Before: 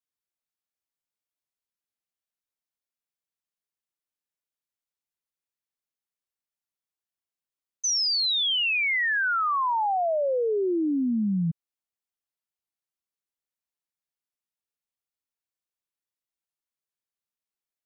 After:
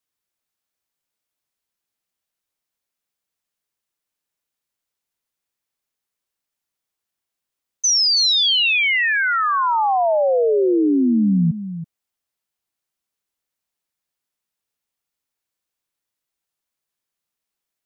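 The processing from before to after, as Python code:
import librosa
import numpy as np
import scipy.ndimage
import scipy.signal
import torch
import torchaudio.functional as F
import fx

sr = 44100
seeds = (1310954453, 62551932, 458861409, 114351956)

p1 = x + fx.echo_single(x, sr, ms=328, db=-12.0, dry=0)
p2 = fx.dynamic_eq(p1, sr, hz=1400.0, q=0.82, threshold_db=-37.0, ratio=4.0, max_db=-3)
y = p2 * librosa.db_to_amplitude(8.5)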